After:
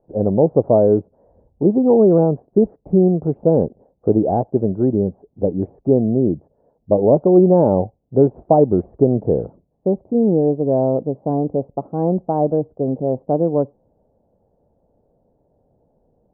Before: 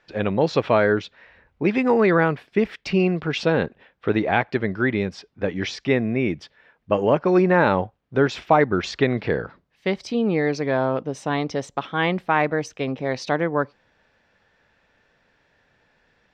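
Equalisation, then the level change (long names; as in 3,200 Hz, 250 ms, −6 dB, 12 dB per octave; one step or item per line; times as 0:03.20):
Butterworth low-pass 730 Hz 36 dB per octave
+6.0 dB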